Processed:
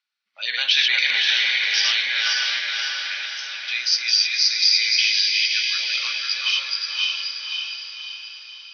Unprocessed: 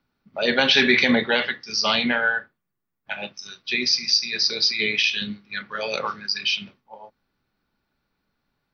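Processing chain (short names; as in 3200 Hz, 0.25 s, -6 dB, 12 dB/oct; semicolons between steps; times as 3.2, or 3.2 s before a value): regenerating reverse delay 0.261 s, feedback 57%, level -2 dB; Butterworth band-pass 4600 Hz, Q 0.64; diffused feedback echo 0.574 s, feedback 47%, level -3 dB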